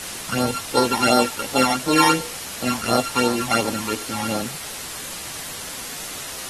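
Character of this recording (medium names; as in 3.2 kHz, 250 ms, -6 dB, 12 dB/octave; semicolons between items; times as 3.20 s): a buzz of ramps at a fixed pitch in blocks of 32 samples; phasing stages 12, 2.8 Hz, lowest notch 430–2600 Hz; a quantiser's noise floor 6-bit, dither triangular; AAC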